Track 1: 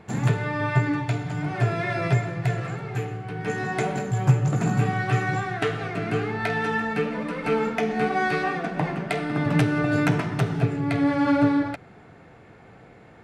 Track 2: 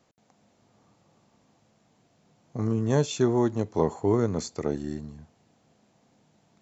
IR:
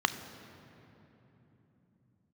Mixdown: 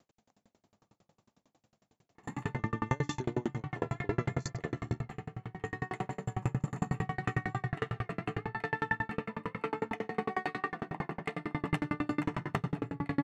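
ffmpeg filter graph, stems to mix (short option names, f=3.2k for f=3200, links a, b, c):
-filter_complex "[0:a]adelay=2150,volume=-9dB,asplit=2[a][b];[b]volume=-5dB[c];[1:a]alimiter=limit=-19dB:level=0:latency=1:release=236,volume=1.5dB,asplit=2[d][e];[e]apad=whole_len=678304[f];[a][f]sidechaincompress=threshold=-40dB:ratio=8:attack=16:release=1310[g];[2:a]atrim=start_sample=2205[h];[c][h]afir=irnorm=-1:irlink=0[i];[g][d][i]amix=inputs=3:normalize=0,aeval=exprs='val(0)*pow(10,-36*if(lt(mod(11*n/s,1),2*abs(11)/1000),1-mod(11*n/s,1)/(2*abs(11)/1000),(mod(11*n/s,1)-2*abs(11)/1000)/(1-2*abs(11)/1000))/20)':c=same"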